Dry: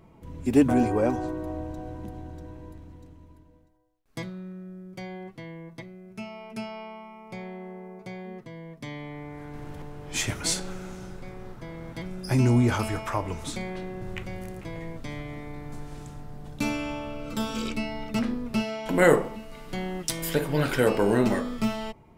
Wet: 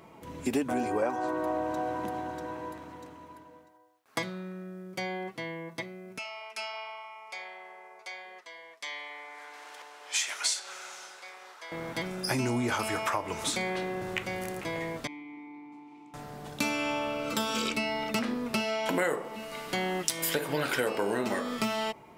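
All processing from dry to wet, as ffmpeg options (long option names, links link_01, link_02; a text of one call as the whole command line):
ffmpeg -i in.wav -filter_complex "[0:a]asettb=1/sr,asplit=3[link_01][link_02][link_03];[link_01]atrim=end=1.024[link_04];[link_02]atrim=start=1.02:end=4.19,asetpts=PTS-STARTPTS,afade=type=in:duration=0.004:curve=qsin,afade=type=out:start_time=3.166:duration=0.004:curve=qsin,highpass=82,equalizer=frequency=1100:width_type=o:width=1.9:gain=8[link_05];[link_03]atrim=start=4.186[link_06];[link_04][link_05]acrossfade=duration=0.004:curve1=hsin:curve2=qsin[link_07];[link_07][link_06]acrossfade=duration=0.004:curve1=qsin:curve2=hsin,asettb=1/sr,asplit=3[link_08][link_09][link_10];[link_08]atrim=end=6.184[link_11];[link_09]atrim=start=6.18:end=11.72,asetpts=PTS-STARTPTS,afade=type=in:duration=0.004:curve=qsin,afade=type=out:start_time=5.536:duration=0.004:curve=qsin,highpass=740,lowpass=5900,aemphasis=mode=production:type=bsi,flanger=delay=1.7:depth=4.4:regen=-78:speed=1.1:shape=triangular[link_12];[link_10]atrim=start=11.716[link_13];[link_11][link_12]acrossfade=duration=0.004:curve1=hsin:curve2=qsin[link_14];[link_14][link_13]acrossfade=duration=0.004:curve1=qsin:curve2=hsin,asettb=1/sr,asplit=3[link_15][link_16][link_17];[link_15]atrim=end=15.074[link_18];[link_16]atrim=start=15.07:end=16.14,asetpts=PTS-STARTPTS,afade=type=in:duration=0.004:curve=qsin,afade=type=out:start_time=1.066:duration=0.004:curve=qsin,asplit=3[link_19][link_20][link_21];[link_19]bandpass=frequency=300:width_type=q:width=8,volume=0dB[link_22];[link_20]bandpass=frequency=870:width_type=q:width=8,volume=-6dB[link_23];[link_21]bandpass=frequency=2240:width_type=q:width=8,volume=-9dB[link_24];[link_22][link_23][link_24]amix=inputs=3:normalize=0,lowshelf=frequency=340:gain=-5.5[link_25];[link_17]atrim=start=16.136[link_26];[link_18][link_25]acrossfade=duration=0.004:curve1=hsin:curve2=qsin[link_27];[link_27][link_26]acrossfade=duration=0.004:curve1=qsin:curve2=hsin,highpass=frequency=580:poles=1,acompressor=threshold=-35dB:ratio=6,volume=8.5dB" out.wav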